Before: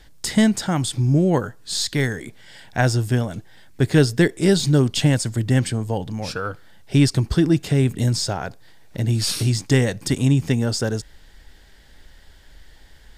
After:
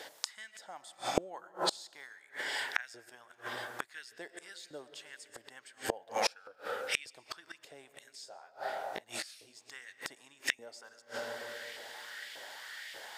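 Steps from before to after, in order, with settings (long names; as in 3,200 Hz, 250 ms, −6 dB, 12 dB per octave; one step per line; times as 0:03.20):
auto-filter high-pass saw up 1.7 Hz 480–2,500 Hz
comb and all-pass reverb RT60 2.2 s, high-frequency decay 0.45×, pre-delay 70 ms, DRR 13 dB
gate with flip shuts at −23 dBFS, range −32 dB
0:08.25–0:09.55: micro pitch shift up and down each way 30 cents → 46 cents
level +6.5 dB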